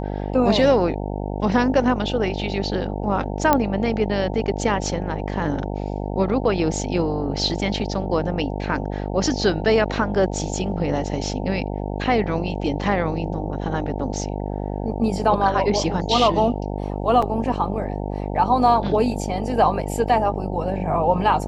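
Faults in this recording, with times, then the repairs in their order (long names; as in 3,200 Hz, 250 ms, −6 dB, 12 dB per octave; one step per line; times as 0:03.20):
mains buzz 50 Hz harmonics 18 −27 dBFS
0:03.53: click −3 dBFS
0:17.22: drop-out 4.8 ms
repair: click removal
hum removal 50 Hz, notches 18
repair the gap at 0:17.22, 4.8 ms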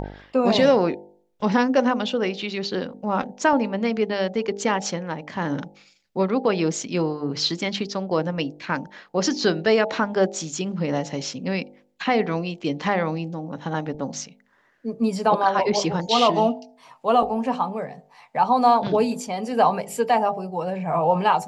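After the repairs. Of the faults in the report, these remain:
none of them is left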